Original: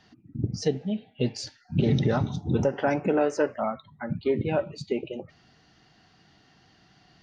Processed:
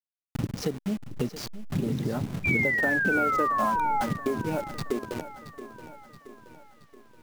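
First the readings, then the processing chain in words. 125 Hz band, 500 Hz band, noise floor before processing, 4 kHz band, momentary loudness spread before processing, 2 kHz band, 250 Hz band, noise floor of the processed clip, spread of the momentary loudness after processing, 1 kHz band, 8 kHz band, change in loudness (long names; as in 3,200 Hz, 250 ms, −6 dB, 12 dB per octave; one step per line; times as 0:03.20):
−4.5 dB, −5.0 dB, −61 dBFS, −3.0 dB, 11 LU, +11.5 dB, −2.0 dB, −73 dBFS, 20 LU, +6.5 dB, 0.0 dB, +0.5 dB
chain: hold until the input has moved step −31 dBFS
dynamic equaliser 260 Hz, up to +6 dB, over −36 dBFS, Q 0.97
downward compressor 5 to 1, threshold −32 dBFS, peak gain reduction 15.5 dB
sound drawn into the spectrogram fall, 0:02.44–0:04.04, 800–2,400 Hz −31 dBFS
feedback echo at a low word length 675 ms, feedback 55%, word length 10 bits, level −14 dB
level +5 dB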